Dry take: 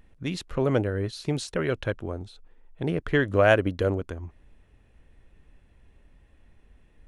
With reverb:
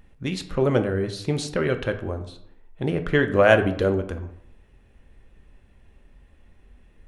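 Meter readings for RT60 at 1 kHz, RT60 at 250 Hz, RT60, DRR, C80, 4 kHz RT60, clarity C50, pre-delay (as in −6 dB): 0.70 s, 0.75 s, 0.70 s, 7.0 dB, 14.5 dB, 0.40 s, 11.5 dB, 3 ms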